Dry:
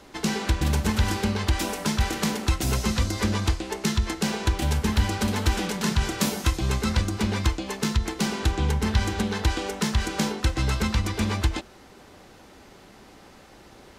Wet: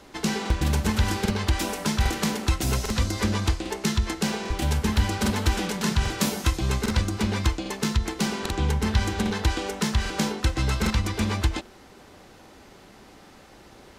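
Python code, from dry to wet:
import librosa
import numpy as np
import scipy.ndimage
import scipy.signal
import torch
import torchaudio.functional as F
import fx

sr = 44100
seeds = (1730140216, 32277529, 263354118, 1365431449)

y = fx.buffer_crackle(x, sr, first_s=0.41, period_s=0.8, block=2048, kind='repeat')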